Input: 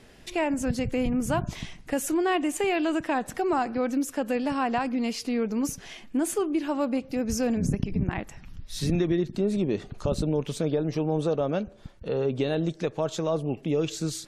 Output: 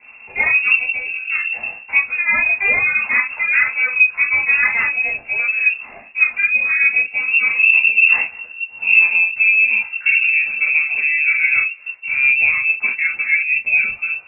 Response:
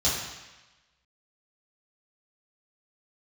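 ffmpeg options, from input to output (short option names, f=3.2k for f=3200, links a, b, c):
-filter_complex "[0:a]asettb=1/sr,asplit=3[a][b][c];[a]atrim=end=0.754[d];[b]atrim=start=0.75:end=1.53,asetpts=PTS-STARTPTS,afade=t=in:d=0.004:c=qsin,afade=t=out:st=0.776:d=0.004:c=qsin,acompressor=threshold=-31dB:ratio=4[e];[c]atrim=start=1.526[f];[d][e]acrossfade=d=0.004:c1=hsin:c2=qsin[g];[g][f]acrossfade=d=0.004:c1=qsin:c2=hsin[h];[1:a]atrim=start_sample=2205,atrim=end_sample=3528[i];[h][i]afir=irnorm=-1:irlink=0,lowpass=f=2.4k:t=q:w=0.5098,lowpass=f=2.4k:t=q:w=0.6013,lowpass=f=2.4k:t=q:w=0.9,lowpass=f=2.4k:t=q:w=2.563,afreqshift=-2800,volume=-2dB"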